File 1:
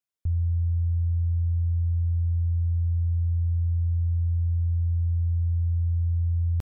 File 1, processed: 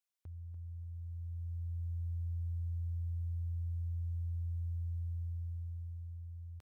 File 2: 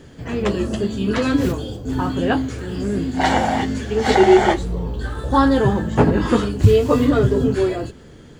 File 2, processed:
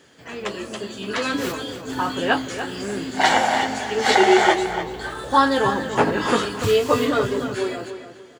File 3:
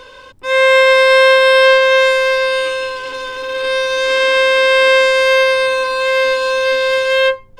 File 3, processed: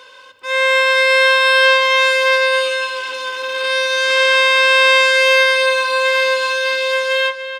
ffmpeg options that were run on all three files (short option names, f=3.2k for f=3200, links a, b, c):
-filter_complex "[0:a]highpass=f=990:p=1,dynaudnorm=f=260:g=11:m=9dB,asplit=2[a][b];[b]adelay=291,lowpass=f=4.1k:p=1,volume=-9.5dB,asplit=2[c][d];[d]adelay=291,lowpass=f=4.1k:p=1,volume=0.3,asplit=2[e][f];[f]adelay=291,lowpass=f=4.1k:p=1,volume=0.3[g];[c][e][g]amix=inputs=3:normalize=0[h];[a][h]amix=inputs=2:normalize=0,volume=-1dB"